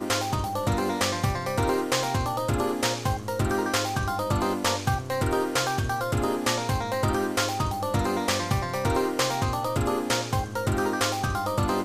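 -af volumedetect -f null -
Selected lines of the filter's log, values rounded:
mean_volume: -26.1 dB
max_volume: -10.2 dB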